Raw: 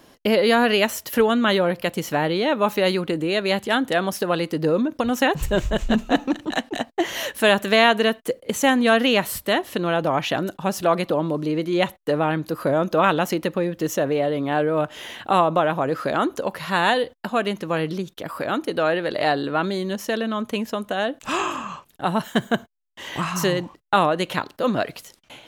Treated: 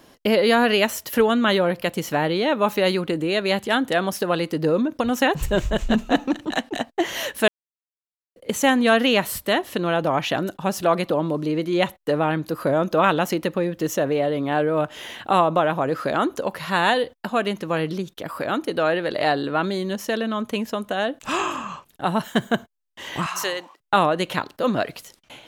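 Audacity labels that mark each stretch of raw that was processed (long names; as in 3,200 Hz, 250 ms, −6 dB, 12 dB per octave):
7.480000	8.360000	silence
23.260000	23.800000	high-pass filter 630 Hz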